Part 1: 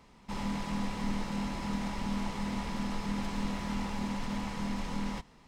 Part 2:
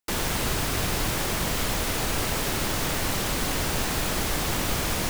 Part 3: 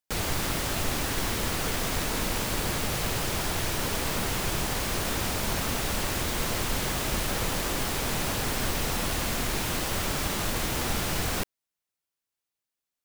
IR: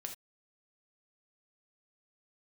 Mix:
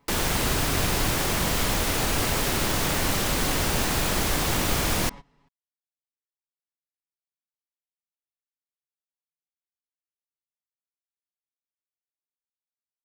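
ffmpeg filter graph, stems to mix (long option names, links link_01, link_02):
-filter_complex "[0:a]lowpass=frequency=3200:poles=1,aecho=1:1:7.1:0.63,volume=-7dB[link_01];[1:a]volume=0dB,asplit=2[link_02][link_03];[link_03]volume=-8dB[link_04];[3:a]atrim=start_sample=2205[link_05];[link_04][link_05]afir=irnorm=-1:irlink=0[link_06];[link_01][link_02][link_06]amix=inputs=3:normalize=0"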